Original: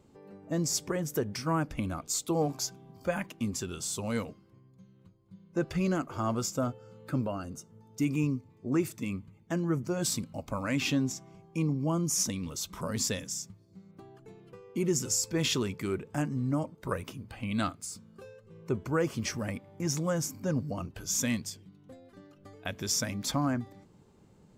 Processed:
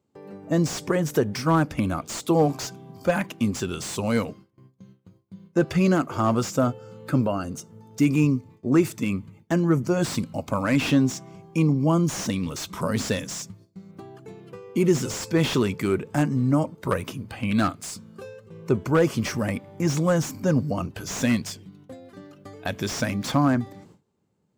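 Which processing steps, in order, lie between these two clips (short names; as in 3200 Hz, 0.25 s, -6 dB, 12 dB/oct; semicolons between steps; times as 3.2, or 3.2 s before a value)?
gate with hold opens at -48 dBFS; HPF 83 Hz; slew limiter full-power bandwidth 54 Hz; gain +9 dB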